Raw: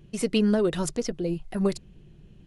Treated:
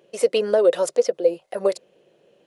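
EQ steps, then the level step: resonant high-pass 530 Hz, resonance Q 6.4; +1.5 dB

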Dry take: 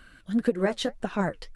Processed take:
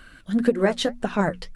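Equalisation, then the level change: hum notches 60/120/180/240 Hz; +5.0 dB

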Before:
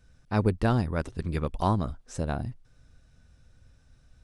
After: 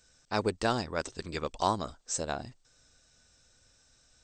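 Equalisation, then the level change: brick-wall FIR low-pass 8.6 kHz; tone controls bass -14 dB, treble +14 dB; 0.0 dB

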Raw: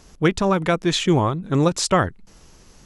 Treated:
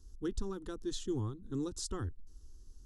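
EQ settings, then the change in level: amplifier tone stack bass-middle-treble 10-0-1; static phaser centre 610 Hz, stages 6; +5.5 dB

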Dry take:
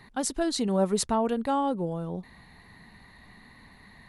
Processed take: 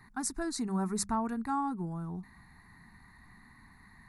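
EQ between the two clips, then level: hum notches 50/100/150/200 Hz; static phaser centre 1.3 kHz, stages 4; -2.0 dB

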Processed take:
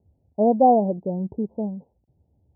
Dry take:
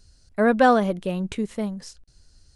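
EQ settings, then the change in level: high-pass 74 Hz 24 dB/octave; steep low-pass 910 Hz 96 dB/octave; dynamic bell 710 Hz, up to +4 dB, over -29 dBFS, Q 4.7; 0.0 dB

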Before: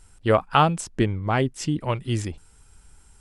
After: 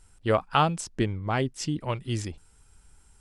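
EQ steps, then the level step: dynamic bell 5 kHz, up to +5 dB, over -46 dBFS, Q 1.3; -4.5 dB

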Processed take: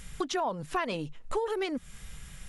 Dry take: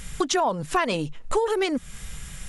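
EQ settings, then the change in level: dynamic bell 7.8 kHz, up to -7 dB, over -48 dBFS, Q 1.3; -7.5 dB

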